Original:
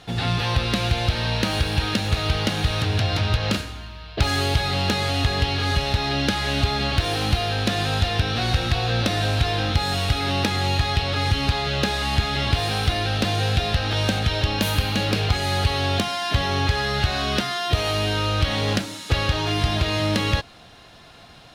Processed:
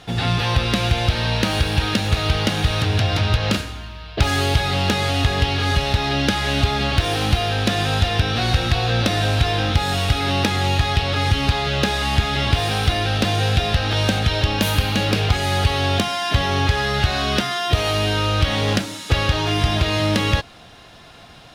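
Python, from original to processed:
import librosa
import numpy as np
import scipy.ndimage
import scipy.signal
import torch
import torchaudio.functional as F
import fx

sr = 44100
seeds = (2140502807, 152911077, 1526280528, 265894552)

y = fx.notch(x, sr, hz=4200.0, q=27.0)
y = y * 10.0 ** (3.0 / 20.0)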